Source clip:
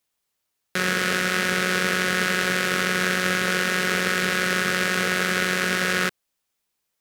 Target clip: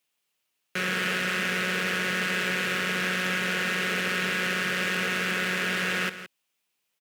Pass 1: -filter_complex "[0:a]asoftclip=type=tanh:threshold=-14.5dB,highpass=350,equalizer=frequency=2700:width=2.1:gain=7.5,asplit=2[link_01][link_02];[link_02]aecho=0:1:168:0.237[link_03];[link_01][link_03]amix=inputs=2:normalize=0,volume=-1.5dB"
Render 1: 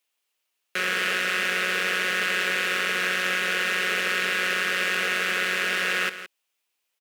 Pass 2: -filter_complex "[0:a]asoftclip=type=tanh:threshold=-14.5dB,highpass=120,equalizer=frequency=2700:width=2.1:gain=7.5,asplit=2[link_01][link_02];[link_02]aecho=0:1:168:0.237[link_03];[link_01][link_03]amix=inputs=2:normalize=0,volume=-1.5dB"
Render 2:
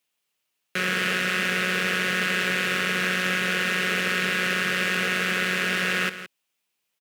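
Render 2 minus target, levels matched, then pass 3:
soft clipping: distortion −5 dB
-filter_complex "[0:a]asoftclip=type=tanh:threshold=-21.5dB,highpass=120,equalizer=frequency=2700:width=2.1:gain=7.5,asplit=2[link_01][link_02];[link_02]aecho=0:1:168:0.237[link_03];[link_01][link_03]amix=inputs=2:normalize=0,volume=-1.5dB"

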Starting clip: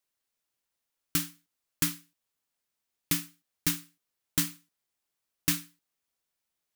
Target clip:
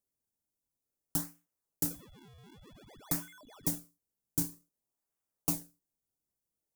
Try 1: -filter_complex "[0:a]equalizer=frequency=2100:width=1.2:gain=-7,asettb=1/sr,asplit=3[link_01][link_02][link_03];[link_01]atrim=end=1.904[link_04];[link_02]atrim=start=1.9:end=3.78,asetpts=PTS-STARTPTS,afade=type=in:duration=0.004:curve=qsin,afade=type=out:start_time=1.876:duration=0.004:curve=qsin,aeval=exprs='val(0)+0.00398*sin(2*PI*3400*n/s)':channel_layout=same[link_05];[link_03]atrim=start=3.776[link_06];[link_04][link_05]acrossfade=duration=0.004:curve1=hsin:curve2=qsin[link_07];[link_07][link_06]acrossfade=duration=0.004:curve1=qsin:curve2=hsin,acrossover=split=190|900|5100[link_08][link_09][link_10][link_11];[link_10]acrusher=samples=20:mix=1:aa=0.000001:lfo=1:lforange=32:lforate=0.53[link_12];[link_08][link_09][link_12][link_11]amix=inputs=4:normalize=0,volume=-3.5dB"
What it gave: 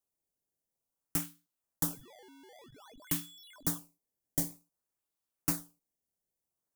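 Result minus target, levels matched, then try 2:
sample-and-hold swept by an LFO: distortion −13 dB
-filter_complex "[0:a]equalizer=frequency=2100:width=1.2:gain=-7,asettb=1/sr,asplit=3[link_01][link_02][link_03];[link_01]atrim=end=1.904[link_04];[link_02]atrim=start=1.9:end=3.78,asetpts=PTS-STARTPTS,afade=type=in:duration=0.004:curve=qsin,afade=type=out:start_time=1.876:duration=0.004:curve=qsin,aeval=exprs='val(0)+0.00398*sin(2*PI*3400*n/s)':channel_layout=same[link_05];[link_03]atrim=start=3.776[link_06];[link_04][link_05]acrossfade=duration=0.004:curve1=hsin:curve2=qsin[link_07];[link_07][link_06]acrossfade=duration=0.004:curve1=qsin:curve2=hsin,acrossover=split=190|900|5100[link_08][link_09][link_10][link_11];[link_10]acrusher=samples=42:mix=1:aa=0.000001:lfo=1:lforange=67.2:lforate=0.53[link_12];[link_08][link_09][link_12][link_11]amix=inputs=4:normalize=0,volume=-3.5dB"

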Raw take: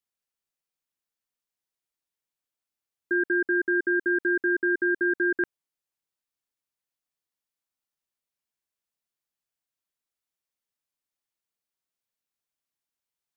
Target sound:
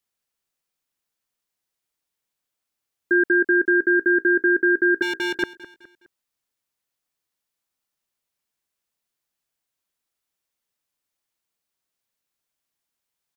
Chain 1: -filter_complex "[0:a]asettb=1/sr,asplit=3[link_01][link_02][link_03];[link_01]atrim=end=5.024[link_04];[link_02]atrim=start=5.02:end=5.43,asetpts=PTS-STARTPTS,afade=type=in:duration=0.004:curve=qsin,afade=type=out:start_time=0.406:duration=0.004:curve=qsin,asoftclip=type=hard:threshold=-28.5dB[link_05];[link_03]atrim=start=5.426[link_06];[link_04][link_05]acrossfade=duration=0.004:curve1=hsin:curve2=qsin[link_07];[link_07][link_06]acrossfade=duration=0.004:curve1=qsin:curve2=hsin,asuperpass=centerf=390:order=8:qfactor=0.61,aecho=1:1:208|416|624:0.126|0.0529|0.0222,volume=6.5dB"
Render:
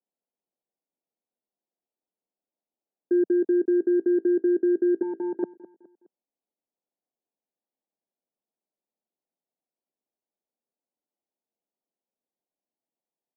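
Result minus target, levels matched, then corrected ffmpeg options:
500 Hz band +4.5 dB
-filter_complex "[0:a]asettb=1/sr,asplit=3[link_01][link_02][link_03];[link_01]atrim=end=5.024[link_04];[link_02]atrim=start=5.02:end=5.43,asetpts=PTS-STARTPTS,afade=type=in:duration=0.004:curve=qsin,afade=type=out:start_time=0.406:duration=0.004:curve=qsin,asoftclip=type=hard:threshold=-28.5dB[link_05];[link_03]atrim=start=5.426[link_06];[link_04][link_05]acrossfade=duration=0.004:curve1=hsin:curve2=qsin[link_07];[link_07][link_06]acrossfade=duration=0.004:curve1=qsin:curve2=hsin,aecho=1:1:208|416|624:0.126|0.0529|0.0222,volume=6.5dB"

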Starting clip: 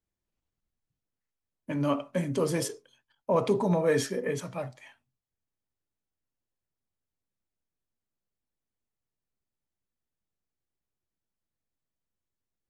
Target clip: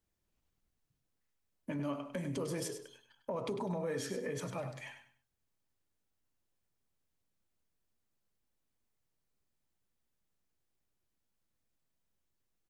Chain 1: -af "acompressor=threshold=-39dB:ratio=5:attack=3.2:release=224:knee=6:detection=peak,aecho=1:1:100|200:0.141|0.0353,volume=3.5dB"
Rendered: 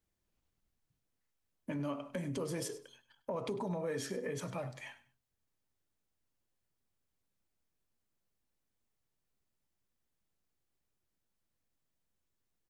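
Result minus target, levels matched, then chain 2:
echo-to-direct −7.5 dB
-af "acompressor=threshold=-39dB:ratio=5:attack=3.2:release=224:knee=6:detection=peak,aecho=1:1:100|200|300:0.335|0.0837|0.0209,volume=3.5dB"

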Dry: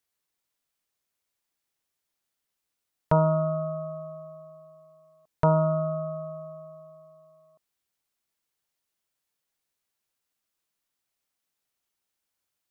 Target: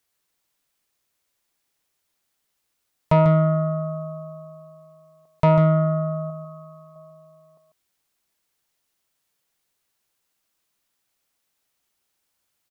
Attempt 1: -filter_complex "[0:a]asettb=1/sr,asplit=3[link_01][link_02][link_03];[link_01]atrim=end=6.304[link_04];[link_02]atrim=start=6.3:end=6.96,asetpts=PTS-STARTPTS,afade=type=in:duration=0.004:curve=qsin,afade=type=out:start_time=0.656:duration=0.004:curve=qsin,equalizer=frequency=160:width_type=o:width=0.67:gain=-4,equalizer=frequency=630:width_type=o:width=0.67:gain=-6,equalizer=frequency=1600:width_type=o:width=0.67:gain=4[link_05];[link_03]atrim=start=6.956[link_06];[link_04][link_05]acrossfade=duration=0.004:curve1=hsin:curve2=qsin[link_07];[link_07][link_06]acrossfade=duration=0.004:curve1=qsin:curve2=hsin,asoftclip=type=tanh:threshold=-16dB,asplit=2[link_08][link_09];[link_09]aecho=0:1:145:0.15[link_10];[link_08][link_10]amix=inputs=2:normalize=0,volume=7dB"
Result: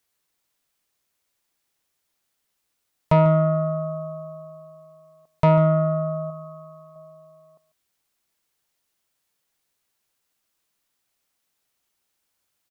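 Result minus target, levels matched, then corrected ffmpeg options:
echo-to-direct −8.5 dB
-filter_complex "[0:a]asettb=1/sr,asplit=3[link_01][link_02][link_03];[link_01]atrim=end=6.304[link_04];[link_02]atrim=start=6.3:end=6.96,asetpts=PTS-STARTPTS,afade=type=in:duration=0.004:curve=qsin,afade=type=out:start_time=0.656:duration=0.004:curve=qsin,equalizer=frequency=160:width_type=o:width=0.67:gain=-4,equalizer=frequency=630:width_type=o:width=0.67:gain=-6,equalizer=frequency=1600:width_type=o:width=0.67:gain=4[link_05];[link_03]atrim=start=6.956[link_06];[link_04][link_05]acrossfade=duration=0.004:curve1=hsin:curve2=qsin[link_07];[link_07][link_06]acrossfade=duration=0.004:curve1=qsin:curve2=hsin,asoftclip=type=tanh:threshold=-16dB,asplit=2[link_08][link_09];[link_09]aecho=0:1:145:0.398[link_10];[link_08][link_10]amix=inputs=2:normalize=0,volume=7dB"

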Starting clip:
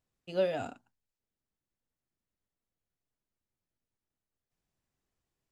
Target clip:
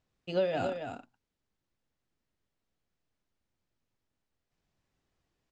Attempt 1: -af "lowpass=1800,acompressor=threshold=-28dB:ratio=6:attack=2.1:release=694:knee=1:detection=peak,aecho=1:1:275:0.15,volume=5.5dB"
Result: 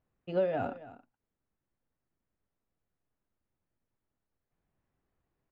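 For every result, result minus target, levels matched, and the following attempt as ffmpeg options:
echo-to-direct −9.5 dB; 2,000 Hz band −3.5 dB
-af "lowpass=1800,acompressor=threshold=-28dB:ratio=6:attack=2.1:release=694:knee=1:detection=peak,aecho=1:1:275:0.447,volume=5.5dB"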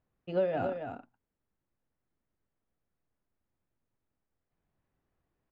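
2,000 Hz band −2.5 dB
-af "lowpass=5700,acompressor=threshold=-28dB:ratio=6:attack=2.1:release=694:knee=1:detection=peak,aecho=1:1:275:0.447,volume=5.5dB"

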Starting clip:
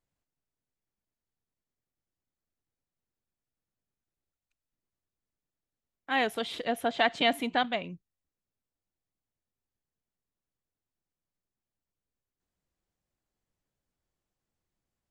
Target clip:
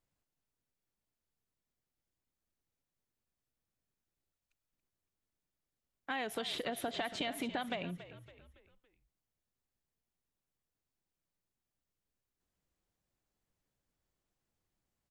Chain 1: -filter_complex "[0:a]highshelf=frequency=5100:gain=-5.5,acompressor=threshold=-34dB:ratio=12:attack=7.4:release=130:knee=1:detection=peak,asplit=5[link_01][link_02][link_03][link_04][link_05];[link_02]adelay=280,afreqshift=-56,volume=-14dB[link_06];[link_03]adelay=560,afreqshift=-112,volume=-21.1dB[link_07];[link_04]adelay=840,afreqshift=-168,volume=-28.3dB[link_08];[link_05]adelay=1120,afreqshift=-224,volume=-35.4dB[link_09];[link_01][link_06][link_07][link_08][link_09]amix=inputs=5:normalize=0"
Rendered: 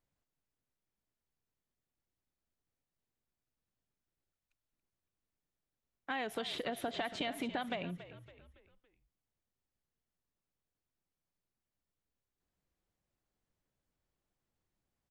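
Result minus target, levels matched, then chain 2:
8,000 Hz band −4.0 dB
-filter_complex "[0:a]acompressor=threshold=-34dB:ratio=12:attack=7.4:release=130:knee=1:detection=peak,asplit=5[link_01][link_02][link_03][link_04][link_05];[link_02]adelay=280,afreqshift=-56,volume=-14dB[link_06];[link_03]adelay=560,afreqshift=-112,volume=-21.1dB[link_07];[link_04]adelay=840,afreqshift=-168,volume=-28.3dB[link_08];[link_05]adelay=1120,afreqshift=-224,volume=-35.4dB[link_09];[link_01][link_06][link_07][link_08][link_09]amix=inputs=5:normalize=0"

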